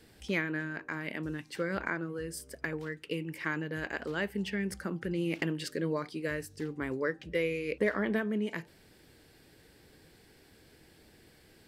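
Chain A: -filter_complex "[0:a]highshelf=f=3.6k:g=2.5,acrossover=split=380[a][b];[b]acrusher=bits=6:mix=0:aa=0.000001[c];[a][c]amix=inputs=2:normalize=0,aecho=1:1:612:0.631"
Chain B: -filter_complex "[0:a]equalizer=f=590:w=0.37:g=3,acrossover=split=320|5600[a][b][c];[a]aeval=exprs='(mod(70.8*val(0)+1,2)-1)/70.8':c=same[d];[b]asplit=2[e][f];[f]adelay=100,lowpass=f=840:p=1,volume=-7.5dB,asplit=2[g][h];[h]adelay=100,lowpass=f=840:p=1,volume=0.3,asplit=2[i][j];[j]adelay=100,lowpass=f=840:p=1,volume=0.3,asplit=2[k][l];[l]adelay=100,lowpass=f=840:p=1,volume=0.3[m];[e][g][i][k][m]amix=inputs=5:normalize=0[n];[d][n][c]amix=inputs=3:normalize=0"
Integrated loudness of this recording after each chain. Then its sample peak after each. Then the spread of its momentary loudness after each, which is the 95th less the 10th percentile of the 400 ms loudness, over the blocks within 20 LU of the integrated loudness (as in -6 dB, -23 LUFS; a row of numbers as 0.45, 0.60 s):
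-33.0, -34.0 LUFS; -14.5, -13.0 dBFS; 6, 7 LU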